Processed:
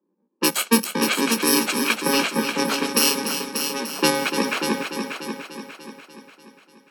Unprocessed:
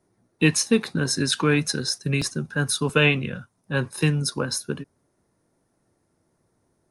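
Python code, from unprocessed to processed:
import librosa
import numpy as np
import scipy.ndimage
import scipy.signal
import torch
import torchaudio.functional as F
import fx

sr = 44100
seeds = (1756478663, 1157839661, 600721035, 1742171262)

p1 = fx.bit_reversed(x, sr, seeds[0], block=64)
p2 = scipy.signal.sosfilt(scipy.signal.butter(12, 190.0, 'highpass', fs=sr, output='sos'), p1)
p3 = fx.env_lowpass(p2, sr, base_hz=640.0, full_db=-17.0)
p4 = fx.rider(p3, sr, range_db=4, speed_s=0.5)
p5 = p4 + fx.echo_heads(p4, sr, ms=294, heads='first and second', feedback_pct=48, wet_db=-9.0, dry=0)
y = p5 * 10.0 ** (5.0 / 20.0)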